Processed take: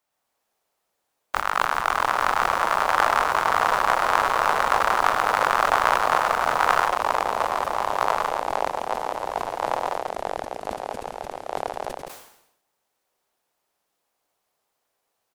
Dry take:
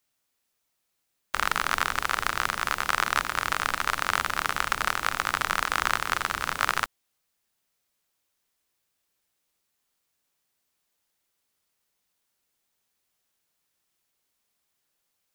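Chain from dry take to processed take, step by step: echo 0.1 s -5.5 dB; 1.39–2.24 negative-ratio compressor -28 dBFS, ratio -0.5; bell 790 Hz +13.5 dB 1.8 oct; echoes that change speed 0.126 s, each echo -3 st, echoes 3; sustainer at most 74 dB/s; gain -5.5 dB

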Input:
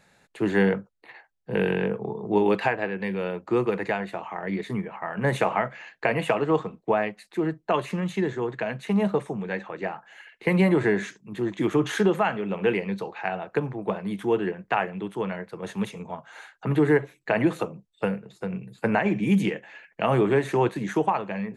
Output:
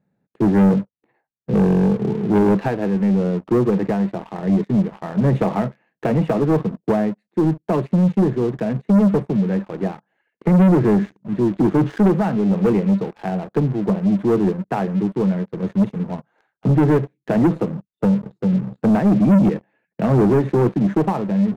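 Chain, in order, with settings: band-pass 190 Hz, Q 1.3; sample leveller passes 3; gain +4.5 dB

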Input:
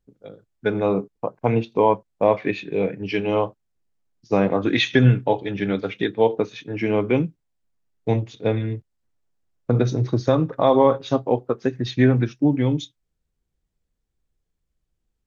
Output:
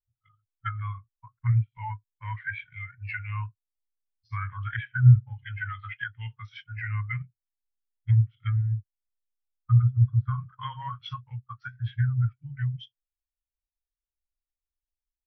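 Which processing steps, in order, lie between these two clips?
elliptic band-stop 110–1400 Hz, stop band 40 dB; treble ducked by the level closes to 1100 Hz, closed at -25 dBFS; formant shift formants -2 st; spectral expander 1.5:1; gain +8.5 dB

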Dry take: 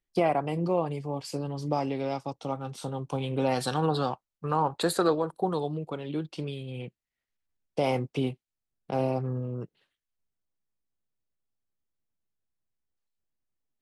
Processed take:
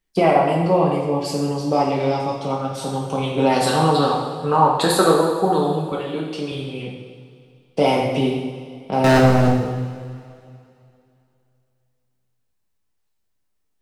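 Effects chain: 5.92–6.52 HPF 250 Hz 6 dB/oct; 9.04–9.48 sample leveller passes 5; reverb, pre-delay 3 ms, DRR -3 dB; gain +6.5 dB

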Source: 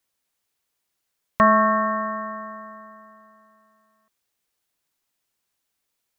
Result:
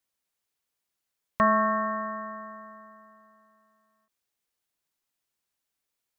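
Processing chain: ending taper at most 210 dB/s; gain -6 dB

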